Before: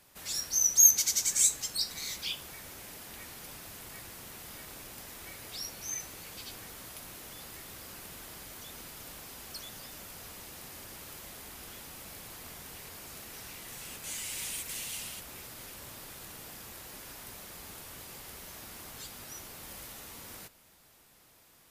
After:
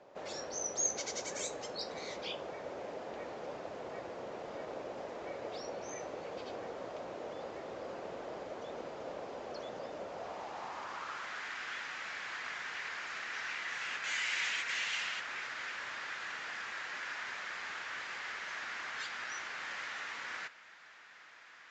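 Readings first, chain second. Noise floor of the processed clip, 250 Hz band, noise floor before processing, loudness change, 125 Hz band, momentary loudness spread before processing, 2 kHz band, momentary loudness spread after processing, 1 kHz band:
−56 dBFS, +2.0 dB, −61 dBFS, −10.5 dB, −6.5 dB, 18 LU, +9.5 dB, 10 LU, +8.5 dB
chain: downsampling to 16,000 Hz
band-pass filter sweep 550 Hz → 1,700 Hz, 0:10.04–0:11.48
level +16 dB

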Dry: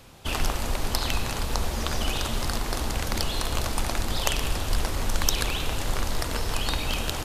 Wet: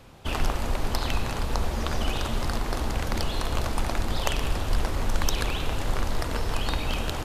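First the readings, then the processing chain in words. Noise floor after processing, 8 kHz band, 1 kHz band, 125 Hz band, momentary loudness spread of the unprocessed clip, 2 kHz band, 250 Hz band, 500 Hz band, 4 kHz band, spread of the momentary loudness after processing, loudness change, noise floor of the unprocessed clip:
−32 dBFS, −6.0 dB, +0.5 dB, +1.0 dB, 3 LU, −1.5 dB, +1.0 dB, +1.0 dB, −4.0 dB, 2 LU, −1.0 dB, −32 dBFS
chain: high-shelf EQ 3,200 Hz −8.5 dB
level +1 dB

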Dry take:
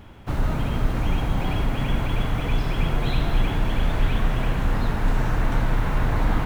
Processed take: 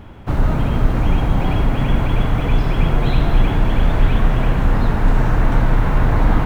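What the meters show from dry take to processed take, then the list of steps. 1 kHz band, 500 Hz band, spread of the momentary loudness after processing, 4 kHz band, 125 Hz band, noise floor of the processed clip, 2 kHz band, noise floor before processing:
+6.0 dB, +6.5 dB, 2 LU, +2.0 dB, +7.0 dB, −21 dBFS, +4.0 dB, −28 dBFS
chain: high-shelf EQ 2,300 Hz −7.5 dB
level +7 dB

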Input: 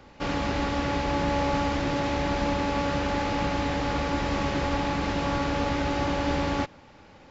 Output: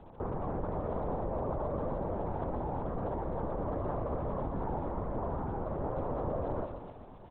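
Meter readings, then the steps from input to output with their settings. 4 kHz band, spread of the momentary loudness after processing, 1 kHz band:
below −35 dB, 2 LU, −9.5 dB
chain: low-pass filter 1,100 Hz 24 dB per octave
downward compressor 6 to 1, threshold −33 dBFS, peak gain reduction 10.5 dB
surface crackle 110 per second −47 dBFS
on a send: repeating echo 125 ms, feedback 58%, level −8 dB
on the sum: linear-prediction vocoder at 8 kHz whisper

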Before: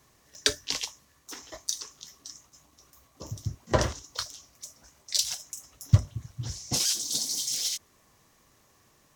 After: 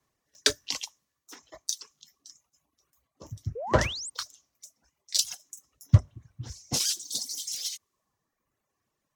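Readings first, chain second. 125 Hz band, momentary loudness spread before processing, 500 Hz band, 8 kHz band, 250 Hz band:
+1.0 dB, 19 LU, +1.0 dB, −1.5 dB, +0.5 dB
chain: reverb reduction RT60 1.3 s
sound drawn into the spectrogram rise, 0:03.55–0:04.10, 420–9,100 Hz −34 dBFS
multiband upward and downward expander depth 40%
level −2 dB

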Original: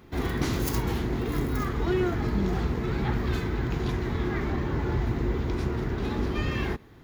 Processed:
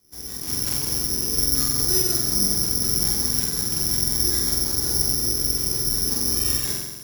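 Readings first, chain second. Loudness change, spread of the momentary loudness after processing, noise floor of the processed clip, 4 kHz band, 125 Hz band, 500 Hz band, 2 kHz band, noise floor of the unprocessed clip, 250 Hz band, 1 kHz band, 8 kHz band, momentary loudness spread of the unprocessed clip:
+9.0 dB, 4 LU, −35 dBFS, +18.0 dB, −4.5 dB, −5.0 dB, −4.5 dB, −50 dBFS, −4.0 dB, −6.5 dB, +26.0 dB, 3 LU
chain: automatic gain control gain up to 11.5 dB
rotating-speaker cabinet horn 5.5 Hz
on a send: flutter between parallel walls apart 7.8 metres, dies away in 1.2 s
on the sum: bad sample-rate conversion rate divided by 8×, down none, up zero stuff
level −17 dB

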